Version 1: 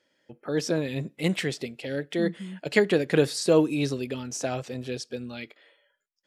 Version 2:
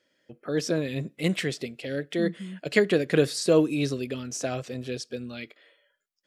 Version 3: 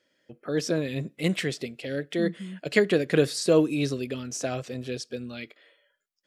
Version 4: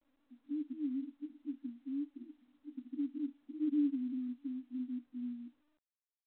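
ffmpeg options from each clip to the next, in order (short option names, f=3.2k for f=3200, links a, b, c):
-af "equalizer=f=870:w=7.1:g=-10"
-af anull
-af "asoftclip=type=hard:threshold=-23dB,asuperpass=centerf=270:order=12:qfactor=4.1,volume=-1dB" -ar 8000 -c:a pcm_mulaw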